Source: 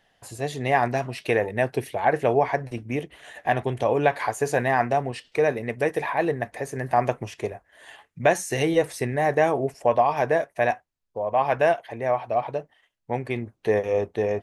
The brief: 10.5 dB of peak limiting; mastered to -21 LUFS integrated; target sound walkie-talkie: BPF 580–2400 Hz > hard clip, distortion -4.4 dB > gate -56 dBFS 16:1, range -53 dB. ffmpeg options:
-af "alimiter=limit=-17.5dB:level=0:latency=1,highpass=580,lowpass=2.4k,asoftclip=type=hard:threshold=-35.5dB,agate=range=-53dB:threshold=-56dB:ratio=16,volume=19dB"

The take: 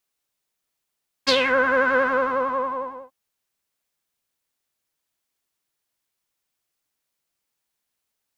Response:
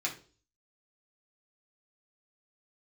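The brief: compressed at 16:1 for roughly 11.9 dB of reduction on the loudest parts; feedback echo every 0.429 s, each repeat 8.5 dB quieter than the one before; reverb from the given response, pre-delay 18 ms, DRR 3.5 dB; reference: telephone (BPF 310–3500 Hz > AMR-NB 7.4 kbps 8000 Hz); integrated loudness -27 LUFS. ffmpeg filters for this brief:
-filter_complex "[0:a]acompressor=threshold=-27dB:ratio=16,aecho=1:1:429|858|1287|1716:0.376|0.143|0.0543|0.0206,asplit=2[a][b];[1:a]atrim=start_sample=2205,adelay=18[c];[b][c]afir=irnorm=-1:irlink=0,volume=-8dB[d];[a][d]amix=inputs=2:normalize=0,highpass=310,lowpass=3.5k,volume=5dB" -ar 8000 -c:a libopencore_amrnb -b:a 7400

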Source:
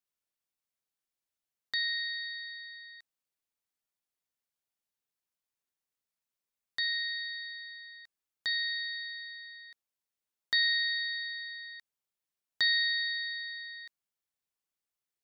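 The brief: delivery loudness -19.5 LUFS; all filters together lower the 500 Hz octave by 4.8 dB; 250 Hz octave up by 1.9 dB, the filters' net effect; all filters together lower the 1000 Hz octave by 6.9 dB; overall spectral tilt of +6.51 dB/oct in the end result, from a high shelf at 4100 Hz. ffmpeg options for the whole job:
-af "equalizer=f=250:t=o:g=4.5,equalizer=f=500:t=o:g=-5,equalizer=f=1k:t=o:g=-8,highshelf=f=4.1k:g=-5,volume=14.5dB"

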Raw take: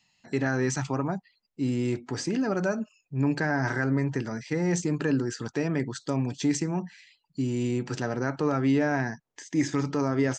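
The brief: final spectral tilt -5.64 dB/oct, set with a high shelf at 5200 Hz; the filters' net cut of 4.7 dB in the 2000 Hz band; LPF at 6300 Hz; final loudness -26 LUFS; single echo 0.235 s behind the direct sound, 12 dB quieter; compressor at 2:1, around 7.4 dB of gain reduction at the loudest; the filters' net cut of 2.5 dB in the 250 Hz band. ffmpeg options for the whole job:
-af "lowpass=6.3k,equalizer=f=250:t=o:g=-3,equalizer=f=2k:t=o:g=-7,highshelf=f=5.2k:g=6,acompressor=threshold=-36dB:ratio=2,aecho=1:1:235:0.251,volume=10.5dB"

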